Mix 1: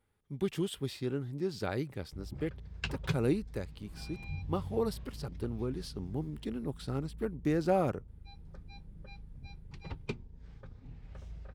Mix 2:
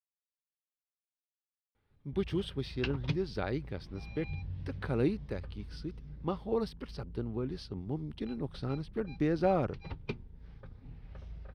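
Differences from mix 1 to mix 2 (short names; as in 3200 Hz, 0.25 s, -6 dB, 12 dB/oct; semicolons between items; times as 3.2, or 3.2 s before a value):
speech: entry +1.75 s; master: add polynomial smoothing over 15 samples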